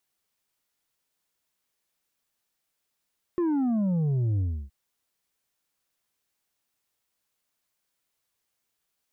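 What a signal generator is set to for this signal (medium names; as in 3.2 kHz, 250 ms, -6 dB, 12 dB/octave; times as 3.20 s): sub drop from 360 Hz, over 1.32 s, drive 5 dB, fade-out 0.31 s, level -23 dB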